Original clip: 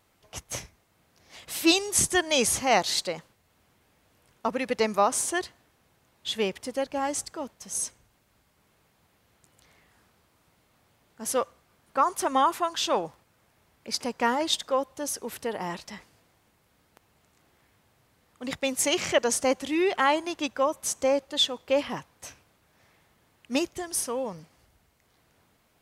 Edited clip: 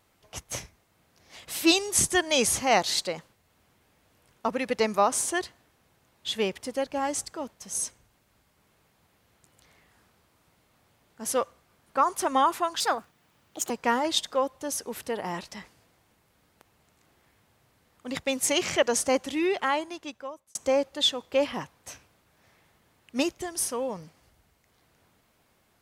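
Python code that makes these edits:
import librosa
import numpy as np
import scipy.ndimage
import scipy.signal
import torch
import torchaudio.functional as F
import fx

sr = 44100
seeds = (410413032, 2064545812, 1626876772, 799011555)

y = fx.edit(x, sr, fx.speed_span(start_s=12.8, length_s=1.26, speed=1.4),
    fx.fade_out_span(start_s=19.63, length_s=1.28), tone=tone)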